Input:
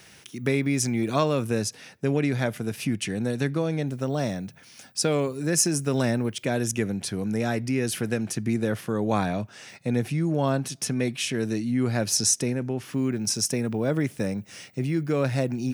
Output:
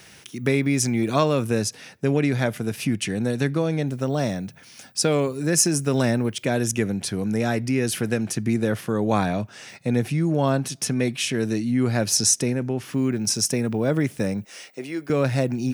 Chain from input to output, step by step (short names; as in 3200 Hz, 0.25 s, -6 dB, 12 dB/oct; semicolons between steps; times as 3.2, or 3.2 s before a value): 14.45–15.1 Chebyshev high-pass 460 Hz, order 2; gain +3 dB